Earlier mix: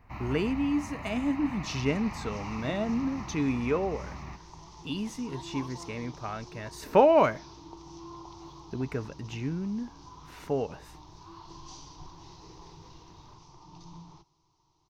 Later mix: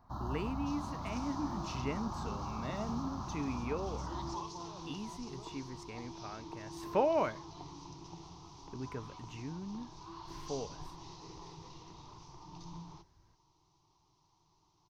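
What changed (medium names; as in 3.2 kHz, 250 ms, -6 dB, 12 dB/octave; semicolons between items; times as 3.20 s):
speech -10.0 dB; first sound: add Chebyshev band-stop 1.6–3.3 kHz, order 4; second sound: entry -1.20 s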